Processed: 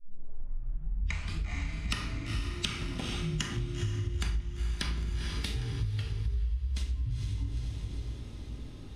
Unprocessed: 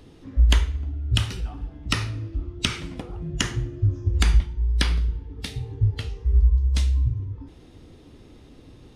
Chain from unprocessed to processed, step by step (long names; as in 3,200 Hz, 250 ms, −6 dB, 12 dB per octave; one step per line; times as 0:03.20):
turntable start at the beginning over 1.56 s
feedback delay with all-pass diffusion 463 ms, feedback 55%, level −10 dB
convolution reverb RT60 0.55 s, pre-delay 5 ms, DRR 4.5 dB
downward compressor 8 to 1, threshold −27 dBFS, peak gain reduction 17.5 dB
dynamic equaliser 460 Hz, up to −4 dB, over −54 dBFS, Q 1.2
level −1.5 dB